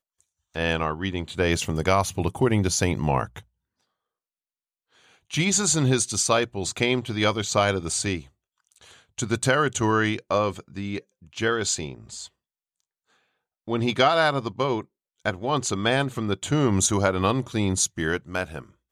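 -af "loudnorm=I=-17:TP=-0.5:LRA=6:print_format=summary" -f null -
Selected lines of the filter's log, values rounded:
Input Integrated:    -24.1 LUFS
Input True Peak:      -6.4 dBTP
Input LRA:             3.9 LU
Input Threshold:     -34.9 LUFS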